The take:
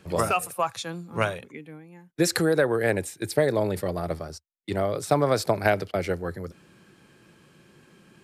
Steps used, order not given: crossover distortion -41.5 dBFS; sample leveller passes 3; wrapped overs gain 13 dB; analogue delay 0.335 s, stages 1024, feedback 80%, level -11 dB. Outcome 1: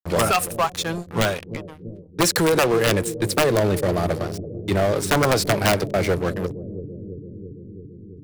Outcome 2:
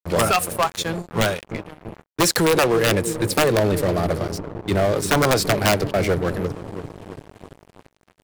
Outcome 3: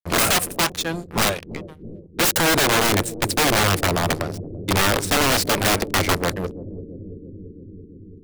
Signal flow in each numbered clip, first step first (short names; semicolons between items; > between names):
crossover distortion > wrapped overs > sample leveller > analogue delay; wrapped overs > analogue delay > crossover distortion > sample leveller; crossover distortion > sample leveller > wrapped overs > analogue delay